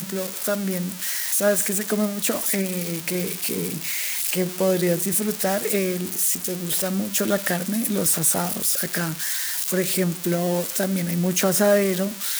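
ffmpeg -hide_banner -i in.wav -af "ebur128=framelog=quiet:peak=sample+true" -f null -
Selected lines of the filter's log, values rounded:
Integrated loudness:
  I:         -22.0 LUFS
  Threshold: -32.0 LUFS
Loudness range:
  LRA:         1.6 LU
  Threshold: -42.1 LUFS
  LRA low:   -23.0 LUFS
  LRA high:  -21.4 LUFS
Sample peak:
  Peak:       -6.6 dBFS
True peak:
  Peak:       -6.6 dBFS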